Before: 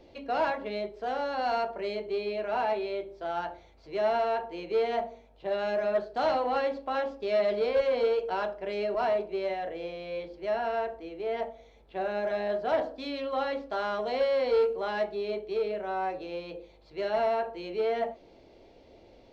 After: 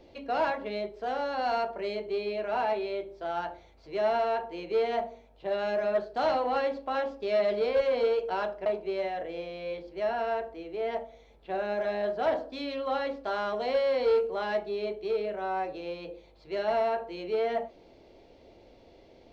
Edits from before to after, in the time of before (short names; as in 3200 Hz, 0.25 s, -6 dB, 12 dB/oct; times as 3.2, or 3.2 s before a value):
8.66–9.12 cut